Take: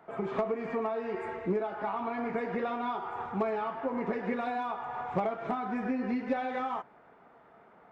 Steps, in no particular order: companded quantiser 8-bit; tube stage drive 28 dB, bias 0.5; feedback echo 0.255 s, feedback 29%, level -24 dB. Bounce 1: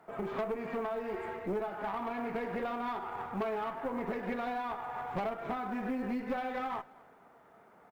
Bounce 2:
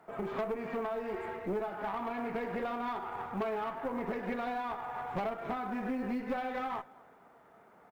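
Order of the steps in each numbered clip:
tube stage > feedback echo > companded quantiser; feedback echo > tube stage > companded quantiser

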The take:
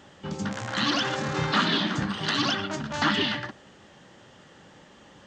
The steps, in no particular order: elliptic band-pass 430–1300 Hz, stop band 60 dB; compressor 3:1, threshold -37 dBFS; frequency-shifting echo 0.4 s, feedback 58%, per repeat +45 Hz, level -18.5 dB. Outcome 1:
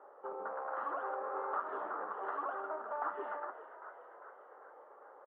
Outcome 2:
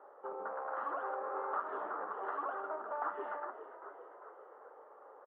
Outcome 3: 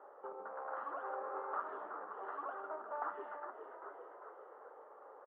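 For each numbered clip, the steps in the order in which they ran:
elliptic band-pass > frequency-shifting echo > compressor; frequency-shifting echo > elliptic band-pass > compressor; frequency-shifting echo > compressor > elliptic band-pass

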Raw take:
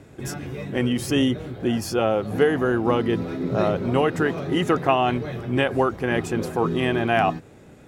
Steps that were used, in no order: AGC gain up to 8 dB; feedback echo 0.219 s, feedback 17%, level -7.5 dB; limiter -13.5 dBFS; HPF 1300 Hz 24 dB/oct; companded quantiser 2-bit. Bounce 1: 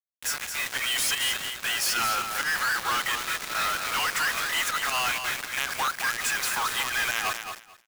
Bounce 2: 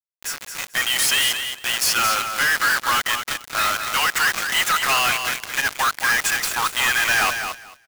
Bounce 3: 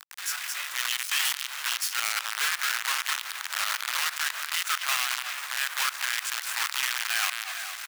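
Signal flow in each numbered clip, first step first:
AGC > HPF > companded quantiser > limiter > feedback echo; HPF > companded quantiser > limiter > AGC > feedback echo; feedback echo > AGC > companded quantiser > HPF > limiter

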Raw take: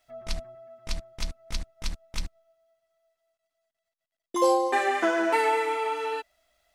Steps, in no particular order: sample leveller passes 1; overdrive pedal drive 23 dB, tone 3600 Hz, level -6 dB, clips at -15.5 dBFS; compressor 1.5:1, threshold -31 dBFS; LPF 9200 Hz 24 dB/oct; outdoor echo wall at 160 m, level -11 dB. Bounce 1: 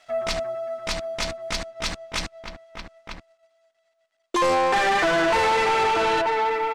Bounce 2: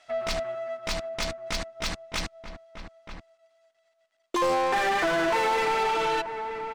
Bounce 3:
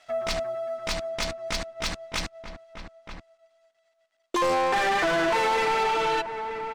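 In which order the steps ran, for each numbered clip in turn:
outdoor echo > compressor > overdrive pedal > LPF > sample leveller; LPF > sample leveller > overdrive pedal > outdoor echo > compressor; LPF > overdrive pedal > sample leveller > outdoor echo > compressor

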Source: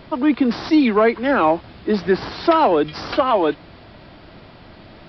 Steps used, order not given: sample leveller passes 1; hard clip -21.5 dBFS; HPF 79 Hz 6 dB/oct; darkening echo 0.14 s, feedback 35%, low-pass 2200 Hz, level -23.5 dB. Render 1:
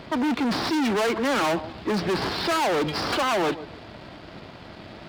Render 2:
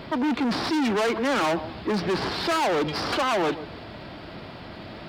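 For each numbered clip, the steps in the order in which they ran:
sample leveller > darkening echo > hard clip > HPF; darkening echo > hard clip > sample leveller > HPF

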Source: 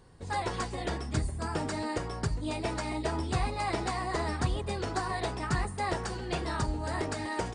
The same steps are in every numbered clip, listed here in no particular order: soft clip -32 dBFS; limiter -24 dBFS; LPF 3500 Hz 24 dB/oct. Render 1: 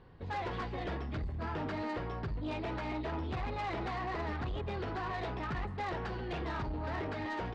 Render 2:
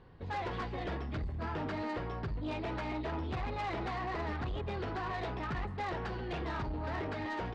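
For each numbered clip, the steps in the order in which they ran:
limiter > LPF > soft clip; LPF > limiter > soft clip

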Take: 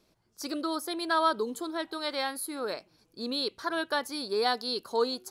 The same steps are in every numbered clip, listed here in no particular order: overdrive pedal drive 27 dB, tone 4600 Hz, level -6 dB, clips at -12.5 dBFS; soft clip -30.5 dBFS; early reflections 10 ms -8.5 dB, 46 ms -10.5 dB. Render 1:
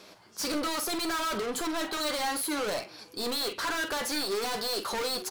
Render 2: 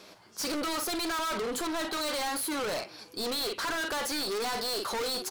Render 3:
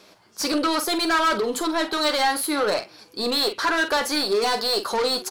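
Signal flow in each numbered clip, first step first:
overdrive pedal > soft clip > early reflections; overdrive pedal > early reflections > soft clip; soft clip > overdrive pedal > early reflections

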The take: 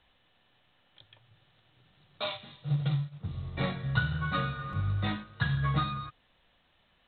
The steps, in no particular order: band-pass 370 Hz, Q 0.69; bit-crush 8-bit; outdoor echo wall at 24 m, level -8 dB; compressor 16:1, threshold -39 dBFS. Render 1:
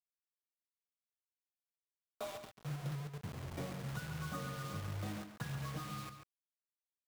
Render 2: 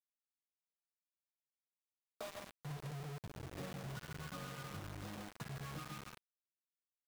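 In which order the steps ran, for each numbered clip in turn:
band-pass > compressor > bit-crush > outdoor echo; outdoor echo > compressor > band-pass > bit-crush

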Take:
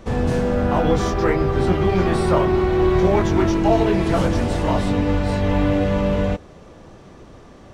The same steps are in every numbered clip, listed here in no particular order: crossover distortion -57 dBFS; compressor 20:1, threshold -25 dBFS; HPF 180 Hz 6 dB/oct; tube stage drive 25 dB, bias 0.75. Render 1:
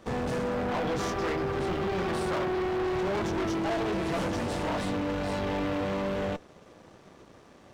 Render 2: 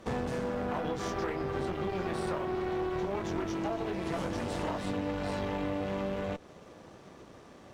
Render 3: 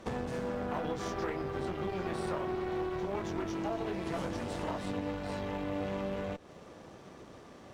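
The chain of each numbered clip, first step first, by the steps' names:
HPF > tube stage > compressor > crossover distortion; HPF > compressor > crossover distortion > tube stage; compressor > crossover distortion > HPF > tube stage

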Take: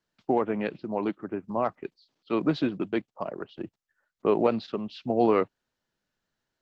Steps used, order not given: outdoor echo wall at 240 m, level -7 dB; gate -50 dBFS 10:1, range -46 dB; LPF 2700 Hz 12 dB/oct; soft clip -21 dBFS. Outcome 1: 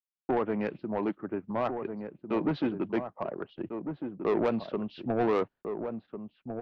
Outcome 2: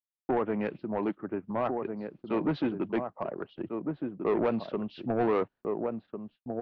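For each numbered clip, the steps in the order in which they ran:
LPF > soft clip > gate > outdoor echo; outdoor echo > soft clip > gate > LPF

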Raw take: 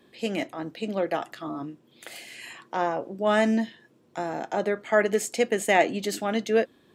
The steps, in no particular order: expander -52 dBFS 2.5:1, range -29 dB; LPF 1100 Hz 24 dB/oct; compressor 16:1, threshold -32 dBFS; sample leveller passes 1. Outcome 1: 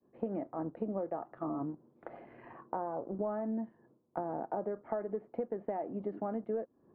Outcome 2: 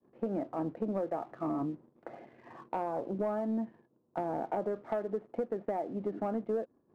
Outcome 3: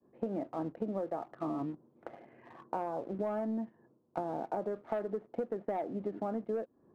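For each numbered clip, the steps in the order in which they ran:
sample leveller > expander > compressor > LPF; compressor > LPF > expander > sample leveller; expander > LPF > sample leveller > compressor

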